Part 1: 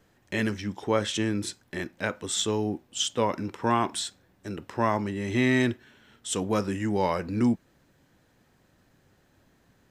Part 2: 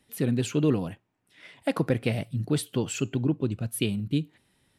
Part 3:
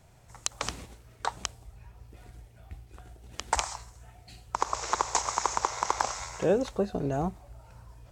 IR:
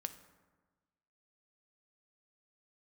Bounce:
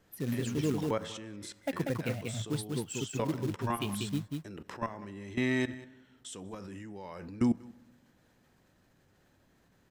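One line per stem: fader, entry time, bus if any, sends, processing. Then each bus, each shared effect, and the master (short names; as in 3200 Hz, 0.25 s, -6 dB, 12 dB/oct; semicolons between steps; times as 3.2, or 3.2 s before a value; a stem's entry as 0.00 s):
-0.5 dB, 0.00 s, send -7.5 dB, echo send -23.5 dB, level quantiser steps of 23 dB
-6.0 dB, 0.00 s, no send, echo send -4 dB, per-bin expansion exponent 1.5; short-mantissa float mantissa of 2-bit
off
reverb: on, RT60 1.3 s, pre-delay 3 ms
echo: echo 0.19 s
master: limiter -19.5 dBFS, peak gain reduction 10 dB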